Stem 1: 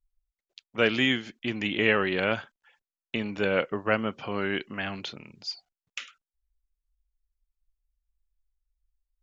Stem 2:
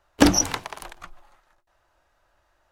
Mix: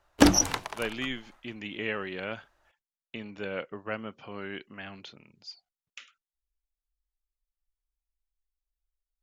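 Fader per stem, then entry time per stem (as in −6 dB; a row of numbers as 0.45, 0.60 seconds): −9.5, −2.5 decibels; 0.00, 0.00 seconds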